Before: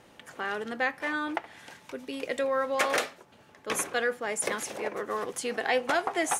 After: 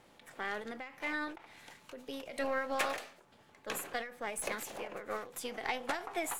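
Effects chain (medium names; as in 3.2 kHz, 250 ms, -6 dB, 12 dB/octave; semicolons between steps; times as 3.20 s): partial rectifier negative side -3 dB; formant shift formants +2 st; endings held to a fixed fall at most 110 dB/s; trim -4.5 dB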